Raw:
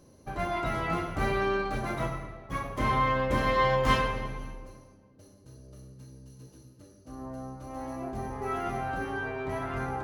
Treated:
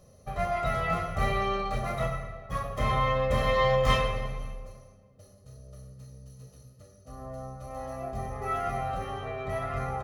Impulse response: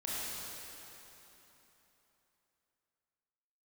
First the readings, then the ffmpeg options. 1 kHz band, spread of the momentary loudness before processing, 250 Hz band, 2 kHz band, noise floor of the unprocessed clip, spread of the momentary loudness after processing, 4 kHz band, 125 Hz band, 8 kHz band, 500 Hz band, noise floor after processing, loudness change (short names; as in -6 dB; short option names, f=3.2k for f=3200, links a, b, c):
0.0 dB, 22 LU, -4.5 dB, -2.0 dB, -57 dBFS, 23 LU, +2.5 dB, +2.0 dB, +1.0 dB, +1.5 dB, -56 dBFS, +0.5 dB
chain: -af "aecho=1:1:1.6:0.87,volume=-1.5dB"